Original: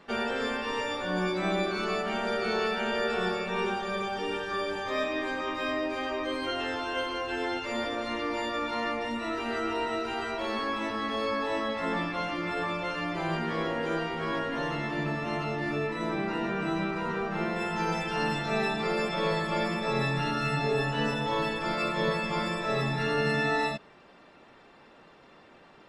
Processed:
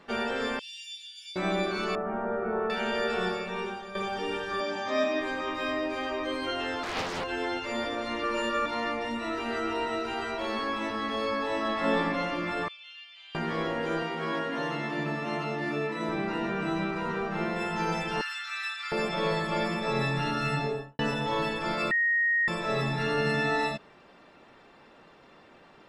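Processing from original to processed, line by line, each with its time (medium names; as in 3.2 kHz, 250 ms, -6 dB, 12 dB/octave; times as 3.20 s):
0.59–1.36 s: elliptic high-pass 3 kHz, stop band 70 dB
1.95–2.70 s: low-pass 1.4 kHz 24 dB/octave
3.22–3.95 s: fade out, to -10.5 dB
4.60–5.20 s: cabinet simulation 150–7900 Hz, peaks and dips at 240 Hz +9 dB, 460 Hz -9 dB, 660 Hz +8 dB, 5.6 kHz +6 dB
6.83–7.24 s: loudspeaker Doppler distortion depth 0.85 ms
8.23–8.66 s: comb 5 ms, depth 97%
11.57–11.97 s: reverb throw, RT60 2.4 s, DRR -0.5 dB
12.68–13.35 s: ladder band-pass 3.4 kHz, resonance 70%
14.02–16.09 s: high-pass 140 Hz 24 dB/octave
18.21–18.92 s: elliptic high-pass 1.3 kHz, stop band 80 dB
20.54–20.99 s: studio fade out
21.91–22.48 s: bleep 1.87 kHz -22 dBFS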